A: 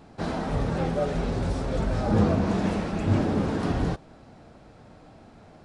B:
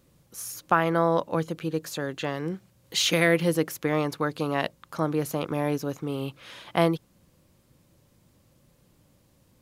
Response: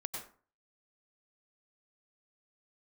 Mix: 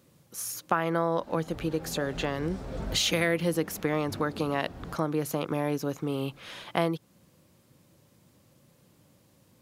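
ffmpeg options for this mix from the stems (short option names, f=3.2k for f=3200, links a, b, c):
-filter_complex "[0:a]adelay=1000,volume=-7dB[a];[1:a]highpass=98,volume=1.5dB,asplit=2[b][c];[c]apad=whole_len=292994[d];[a][d]sidechaincompress=threshold=-26dB:ratio=10:attack=9.5:release=1070[e];[e][b]amix=inputs=2:normalize=0,acompressor=threshold=-26dB:ratio=2"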